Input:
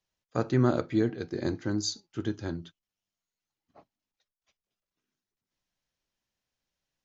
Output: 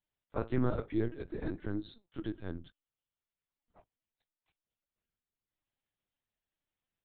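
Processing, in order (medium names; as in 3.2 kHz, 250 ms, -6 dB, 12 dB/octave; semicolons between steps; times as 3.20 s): LPC vocoder at 8 kHz pitch kept; trim -6 dB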